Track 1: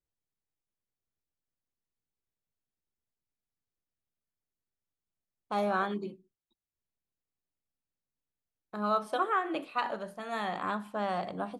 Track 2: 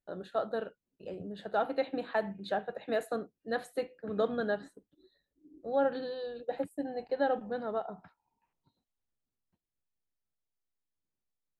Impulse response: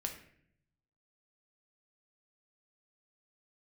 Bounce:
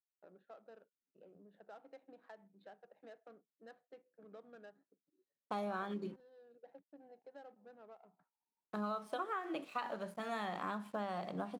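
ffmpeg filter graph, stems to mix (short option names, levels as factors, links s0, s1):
-filter_complex "[0:a]aeval=exprs='sgn(val(0))*max(abs(val(0))-0.00133,0)':c=same,volume=0.944,asplit=2[s0][s1];[1:a]adynamicsmooth=sensitivity=5.5:basefreq=1100,highpass=f=380:p=1,acompressor=threshold=0.00355:ratio=2,adelay=150,volume=0.237[s2];[s1]apad=whole_len=518029[s3];[s2][s3]sidechaincompress=threshold=0.0126:ratio=8:attack=48:release=819[s4];[s0][s4]amix=inputs=2:normalize=0,lowshelf=f=110:t=q:w=1.5:g=-10,acompressor=threshold=0.0141:ratio=6"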